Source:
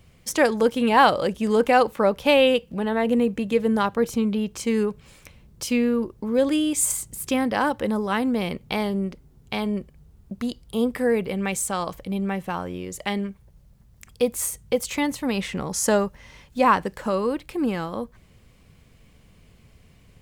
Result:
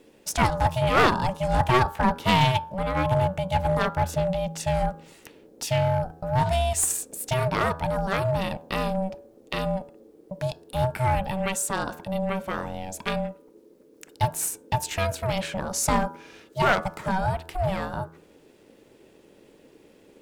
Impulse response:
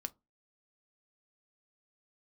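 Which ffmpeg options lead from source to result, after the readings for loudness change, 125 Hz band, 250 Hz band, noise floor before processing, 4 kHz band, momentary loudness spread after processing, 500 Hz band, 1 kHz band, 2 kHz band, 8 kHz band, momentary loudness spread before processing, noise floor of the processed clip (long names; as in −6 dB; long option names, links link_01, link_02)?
−2.5 dB, +9.0 dB, −7.5 dB, −55 dBFS, −1.0 dB, 11 LU, −4.5 dB, 0.0 dB, −1.0 dB, −1.0 dB, 12 LU, −56 dBFS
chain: -af "aeval=exprs='val(0)*sin(2*PI*380*n/s)':channel_layout=same,aeval=exprs='clip(val(0),-1,0.106)':channel_layout=same,bandreject=frequency=81.42:width_type=h:width=4,bandreject=frequency=162.84:width_type=h:width=4,bandreject=frequency=244.26:width_type=h:width=4,bandreject=frequency=325.68:width_type=h:width=4,bandreject=frequency=407.1:width_type=h:width=4,bandreject=frequency=488.52:width_type=h:width=4,bandreject=frequency=569.94:width_type=h:width=4,bandreject=frequency=651.36:width_type=h:width=4,bandreject=frequency=732.78:width_type=h:width=4,bandreject=frequency=814.2:width_type=h:width=4,bandreject=frequency=895.62:width_type=h:width=4,bandreject=frequency=977.04:width_type=h:width=4,bandreject=frequency=1058.46:width_type=h:width=4,bandreject=frequency=1139.88:width_type=h:width=4,bandreject=frequency=1221.3:width_type=h:width=4,bandreject=frequency=1302.72:width_type=h:width=4,bandreject=frequency=1384.14:width_type=h:width=4,bandreject=frequency=1465.56:width_type=h:width=4,bandreject=frequency=1546.98:width_type=h:width=4,bandreject=frequency=1628.4:width_type=h:width=4,bandreject=frequency=1709.82:width_type=h:width=4,volume=2dB"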